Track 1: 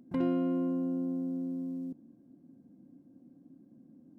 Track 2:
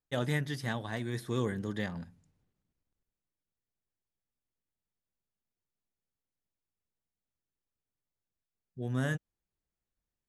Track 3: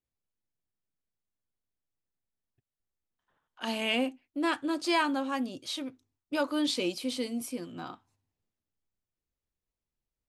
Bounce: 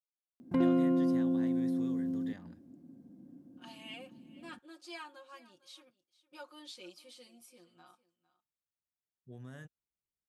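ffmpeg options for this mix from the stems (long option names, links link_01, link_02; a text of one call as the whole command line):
ffmpeg -i stem1.wav -i stem2.wav -i stem3.wav -filter_complex "[0:a]adelay=400,volume=2.5dB[link_01];[1:a]acompressor=threshold=-34dB:ratio=6,adelay=500,volume=-10.5dB[link_02];[2:a]lowshelf=frequency=400:gain=-11,bandreject=frequency=2000:width=26,aecho=1:1:5.6:0.96,volume=-19.5dB,asplit=2[link_03][link_04];[link_04]volume=-19dB,aecho=0:1:454:1[link_05];[link_01][link_02][link_03][link_05]amix=inputs=4:normalize=0,highpass=41" out.wav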